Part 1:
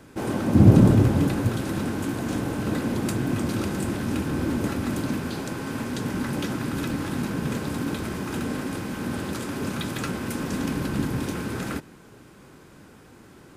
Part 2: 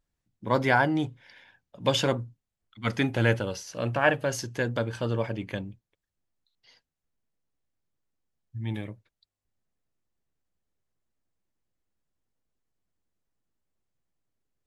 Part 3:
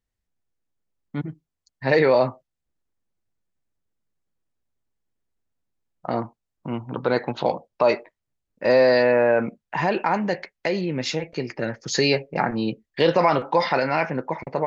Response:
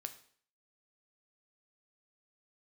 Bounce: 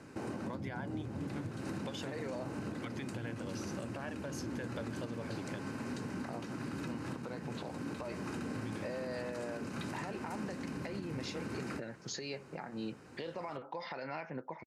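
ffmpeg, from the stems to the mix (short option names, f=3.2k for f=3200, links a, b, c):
-filter_complex "[0:a]lowpass=8k,bandreject=f=3.4k:w=5.6,acompressor=threshold=-30dB:ratio=6,volume=-3.5dB[a];[1:a]volume=-6.5dB[b];[2:a]adelay=200,volume=-10dB[c];[b][c]amix=inputs=2:normalize=0,acompressor=threshold=-32dB:ratio=6,volume=0dB[d];[a][d]amix=inputs=2:normalize=0,highpass=86,alimiter=level_in=6.5dB:limit=-24dB:level=0:latency=1:release=336,volume=-6.5dB"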